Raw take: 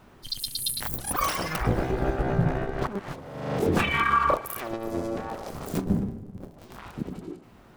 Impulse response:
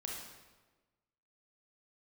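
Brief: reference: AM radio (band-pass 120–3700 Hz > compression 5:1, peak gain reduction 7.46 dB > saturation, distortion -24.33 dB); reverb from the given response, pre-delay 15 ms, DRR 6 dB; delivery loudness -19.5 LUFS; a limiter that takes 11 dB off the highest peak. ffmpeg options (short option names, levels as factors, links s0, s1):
-filter_complex "[0:a]alimiter=limit=0.0841:level=0:latency=1,asplit=2[s0][s1];[1:a]atrim=start_sample=2205,adelay=15[s2];[s1][s2]afir=irnorm=-1:irlink=0,volume=0.531[s3];[s0][s3]amix=inputs=2:normalize=0,highpass=120,lowpass=3700,acompressor=threshold=0.0224:ratio=5,asoftclip=threshold=0.0501,volume=8.91"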